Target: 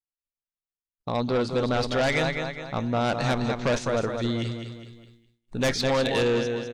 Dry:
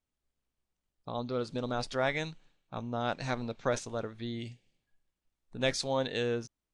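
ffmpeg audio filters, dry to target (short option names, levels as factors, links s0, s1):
-filter_complex "[0:a]acrossover=split=4800[s0][s1];[s1]acompressor=threshold=0.00224:ratio=4:attack=1:release=60[s2];[s0][s2]amix=inputs=2:normalize=0,aecho=1:1:206|412|618|824|1030:0.398|0.171|0.0736|0.0317|0.0136,asplit=2[s3][s4];[s4]aeval=exprs='0.168*sin(PI/2*3.98*val(0)/0.168)':c=same,volume=0.422[s5];[s3][s5]amix=inputs=2:normalize=0,agate=range=0.0224:threshold=0.00316:ratio=3:detection=peak"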